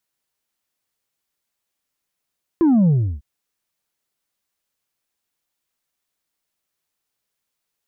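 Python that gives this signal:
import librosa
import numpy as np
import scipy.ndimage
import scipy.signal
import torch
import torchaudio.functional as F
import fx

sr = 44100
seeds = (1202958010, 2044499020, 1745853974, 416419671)

y = fx.sub_drop(sr, level_db=-12.0, start_hz=350.0, length_s=0.6, drive_db=3, fade_s=0.33, end_hz=65.0)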